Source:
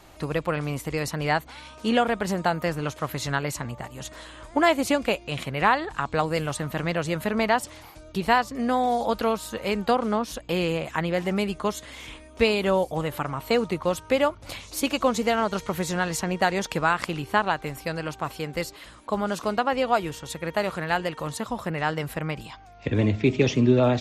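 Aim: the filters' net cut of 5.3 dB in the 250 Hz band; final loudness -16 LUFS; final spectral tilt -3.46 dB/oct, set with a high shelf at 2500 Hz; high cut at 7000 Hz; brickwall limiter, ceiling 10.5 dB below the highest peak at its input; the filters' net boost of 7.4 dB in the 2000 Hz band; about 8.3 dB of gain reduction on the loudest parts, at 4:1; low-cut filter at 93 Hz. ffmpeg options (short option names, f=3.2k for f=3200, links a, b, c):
-af "highpass=93,lowpass=7k,equalizer=f=250:t=o:g=-7,equalizer=f=2k:t=o:g=6.5,highshelf=f=2.5k:g=6.5,acompressor=threshold=-21dB:ratio=4,volume=13.5dB,alimiter=limit=-2.5dB:level=0:latency=1"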